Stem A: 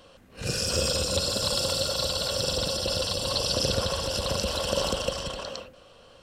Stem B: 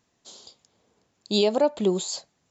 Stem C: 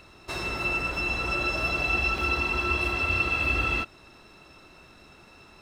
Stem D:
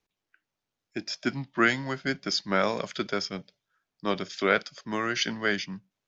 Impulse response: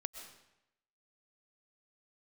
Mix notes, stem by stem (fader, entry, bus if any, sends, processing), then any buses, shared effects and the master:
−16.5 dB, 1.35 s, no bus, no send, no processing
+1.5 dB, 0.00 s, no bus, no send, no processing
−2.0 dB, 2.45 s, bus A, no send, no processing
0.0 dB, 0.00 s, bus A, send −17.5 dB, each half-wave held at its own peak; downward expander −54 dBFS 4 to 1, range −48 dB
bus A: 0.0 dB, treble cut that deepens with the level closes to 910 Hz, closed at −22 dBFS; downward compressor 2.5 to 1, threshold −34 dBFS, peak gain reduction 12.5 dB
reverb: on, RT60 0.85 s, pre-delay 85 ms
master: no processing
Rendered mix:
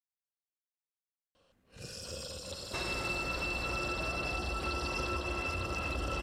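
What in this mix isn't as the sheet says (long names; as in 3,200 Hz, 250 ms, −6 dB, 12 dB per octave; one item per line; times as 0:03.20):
stem B: muted
stem D: muted
reverb: off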